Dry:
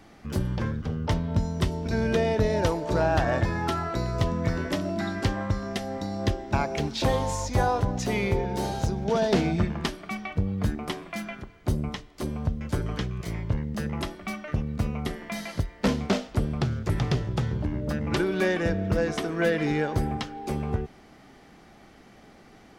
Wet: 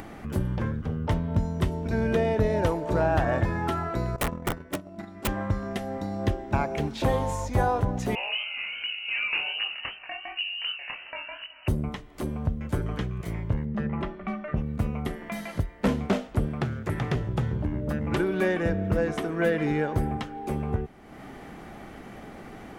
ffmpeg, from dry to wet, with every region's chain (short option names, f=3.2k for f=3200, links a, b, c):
-filter_complex "[0:a]asettb=1/sr,asplit=3[a][b][c];[a]atrim=end=4.164[d];[b]atrim=start=4.16:end=5.28,asetpts=PTS-STARTPTS,afade=t=in:d=0.004:c=qsin,afade=t=out:st=1.116:d=0.004:c=qsin,agate=range=-17dB:threshold=-27dB:ratio=16:release=100:detection=peak,aeval=exprs='(mod(8.91*val(0)+1,2)-1)/8.91':c=same,bandreject=f=1.6k:w=15[e];[c]atrim=start=5.276[f];[d][e]acrossfade=d=0.004:c1=hsin:c2=qsin[g];[g][f]acrossfade=d=0.004:c1=qsin:c2=hsin,asettb=1/sr,asplit=3[h][i][j];[h]atrim=end=8.154[k];[i]atrim=start=8.15:end=11.68,asetpts=PTS-STARTPTS,afade=t=in:d=0.004:c=qsin,afade=t=out:st=3.526:d=0.004:c=qsin,lowpass=f=2.6k:t=q:w=0.5098,lowpass=f=2.6k:t=q:w=0.6013,lowpass=f=2.6k:t=q:w=0.9,lowpass=f=2.6k:t=q:w=2.563,afreqshift=-3000,flanger=delay=20:depth=6.8:speed=2.7[l];[j]atrim=start=11.676[m];[k][l]acrossfade=d=0.004:c1=hsin:c2=qsin[n];[n][m]acrossfade=d=0.004:c1=qsin:c2=hsin,asettb=1/sr,asplit=3[o][p][q];[o]atrim=end=13.654[r];[p]atrim=start=13.65:end=14.57,asetpts=PTS-STARTPTS,afade=t=in:d=0.004:c=qsin,afade=t=out:st=0.916:d=0.004:c=qsin,lowpass=2.6k,aecho=1:1:5.1:0.46,atrim=end_sample=40572[s];[q]atrim=start=14.566[t];[r][s]acrossfade=d=0.004:c1=hsin:c2=qsin[u];[u][t]acrossfade=d=0.004:c1=qsin:c2=hsin,asettb=1/sr,asplit=3[v][w][x];[v]atrim=end=16.484[y];[w]atrim=start=16.48:end=17.16,asetpts=PTS-STARTPTS,afade=t=in:d=0.004:c=qsin,afade=t=out:st=0.676:d=0.004:c=qsin,highpass=f=130:p=1,equalizer=f=1.8k:w=1.6:g=4[z];[x]atrim=start=17.156[aa];[y][z]acrossfade=d=0.004:c1=hsin:c2=qsin[ab];[ab][aa]acrossfade=d=0.004:c1=qsin:c2=hsin,equalizer=f=5k:w=1.1:g=-10,acompressor=mode=upward:threshold=-32dB:ratio=2.5"